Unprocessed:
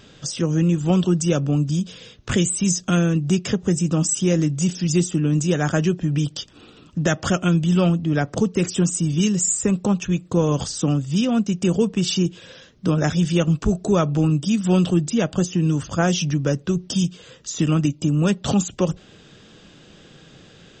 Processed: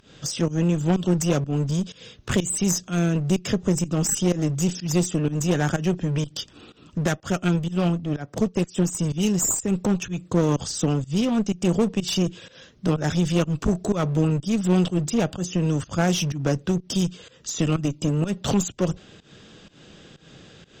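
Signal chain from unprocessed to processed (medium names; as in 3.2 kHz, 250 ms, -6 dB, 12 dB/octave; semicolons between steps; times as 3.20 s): volume shaper 125 bpm, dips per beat 1, -19 dB, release 184 ms; one-sided clip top -23.5 dBFS; 7.05–8.99 s: upward expansion 1.5:1, over -37 dBFS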